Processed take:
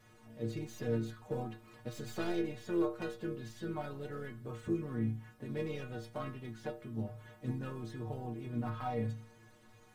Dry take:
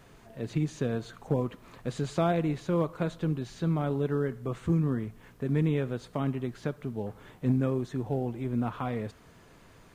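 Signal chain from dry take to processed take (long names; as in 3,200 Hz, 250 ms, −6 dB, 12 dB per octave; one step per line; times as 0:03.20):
stylus tracing distortion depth 0.09 ms
stiff-string resonator 110 Hz, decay 0.46 s, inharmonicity 0.008
pitch-shifted copies added +4 semitones −15 dB
level +6 dB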